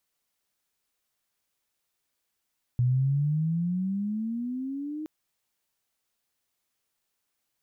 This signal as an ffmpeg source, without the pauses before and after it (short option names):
-f lavfi -i "aevalsrc='pow(10,(-20-12*t/2.27)/20)*sin(2*PI*121*2.27/(16.5*log(2)/12)*(exp(16.5*log(2)/12*t/2.27)-1))':d=2.27:s=44100"